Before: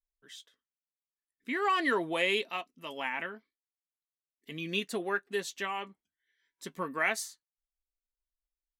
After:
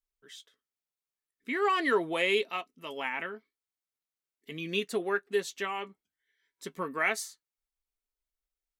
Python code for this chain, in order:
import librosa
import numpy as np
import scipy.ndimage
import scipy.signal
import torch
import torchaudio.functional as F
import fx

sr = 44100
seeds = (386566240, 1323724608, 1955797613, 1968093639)

y = fx.small_body(x, sr, hz=(420.0, 1300.0, 2200.0), ring_ms=45, db=6)